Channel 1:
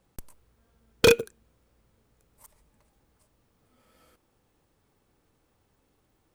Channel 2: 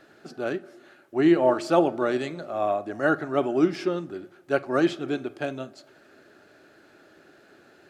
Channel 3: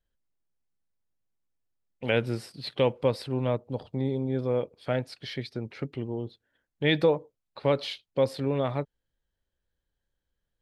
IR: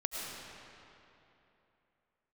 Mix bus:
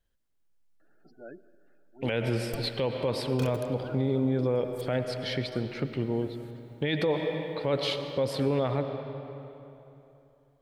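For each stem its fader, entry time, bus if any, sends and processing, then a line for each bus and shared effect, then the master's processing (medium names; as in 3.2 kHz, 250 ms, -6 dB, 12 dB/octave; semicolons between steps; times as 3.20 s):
-7.0 dB, 2.35 s, send -16.5 dB, compressor with a negative ratio -25 dBFS, ratio -1
-16.0 dB, 0.80 s, send -18.5 dB, band-stop 380 Hz, Q 12; spectral gate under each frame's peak -15 dB strong; auto duck -10 dB, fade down 0.70 s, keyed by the third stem
+1.5 dB, 0.00 s, send -9.5 dB, none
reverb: on, RT60 3.0 s, pre-delay 65 ms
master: peak limiter -17.5 dBFS, peak gain reduction 11.5 dB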